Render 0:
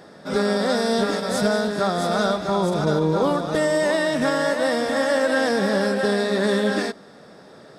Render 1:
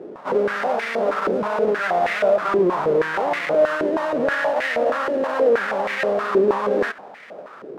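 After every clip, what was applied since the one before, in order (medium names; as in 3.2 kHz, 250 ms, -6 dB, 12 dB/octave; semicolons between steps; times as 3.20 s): square wave that keeps the level; loudness maximiser +18.5 dB; step-sequenced band-pass 6.3 Hz 380–2000 Hz; trim -6 dB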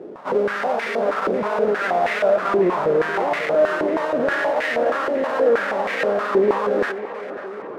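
tape echo 546 ms, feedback 73%, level -12 dB, low-pass 2.8 kHz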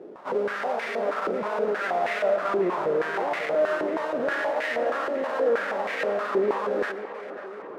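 bass shelf 140 Hz -9 dB; on a send at -15.5 dB: reverberation RT60 0.50 s, pre-delay 80 ms; on the sum: trim -5.5 dB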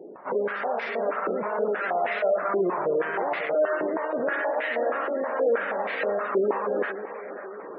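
spectral gate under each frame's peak -25 dB strong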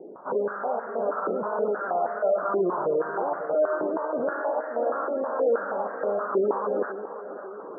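steep low-pass 1.5 kHz 72 dB/octave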